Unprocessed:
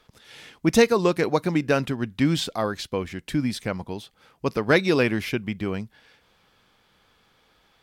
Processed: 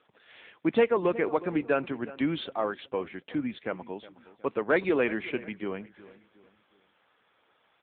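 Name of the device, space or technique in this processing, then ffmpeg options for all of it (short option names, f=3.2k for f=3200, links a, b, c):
telephone: -filter_complex "[0:a]highpass=290,lowpass=3.3k,asplit=2[a][b];[b]adelay=365,lowpass=f=3.1k:p=1,volume=-18dB,asplit=2[c][d];[d]adelay=365,lowpass=f=3.1k:p=1,volume=0.38,asplit=2[e][f];[f]adelay=365,lowpass=f=3.1k:p=1,volume=0.38[g];[a][c][e][g]amix=inputs=4:normalize=0,asoftclip=type=tanh:threshold=-10.5dB,volume=-2dB" -ar 8000 -c:a libopencore_amrnb -b:a 7950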